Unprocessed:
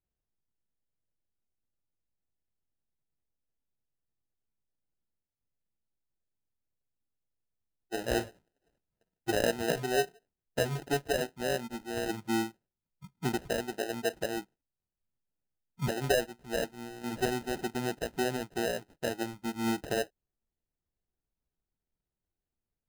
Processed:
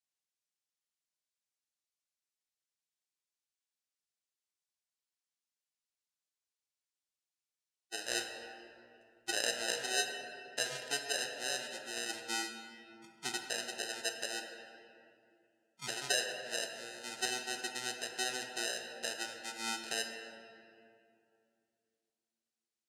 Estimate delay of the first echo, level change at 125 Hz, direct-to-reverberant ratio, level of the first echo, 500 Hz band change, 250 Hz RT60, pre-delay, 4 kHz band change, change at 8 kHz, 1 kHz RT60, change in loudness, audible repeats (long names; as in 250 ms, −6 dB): no echo audible, −22.5 dB, 3.0 dB, no echo audible, −11.5 dB, 3.2 s, 3 ms, +3.5 dB, +4.5 dB, 2.3 s, −4.0 dB, no echo audible